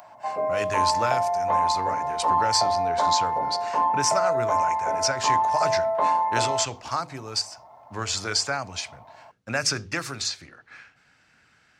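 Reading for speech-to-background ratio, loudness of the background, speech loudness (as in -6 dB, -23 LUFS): -4.5 dB, -24.0 LUFS, -28.5 LUFS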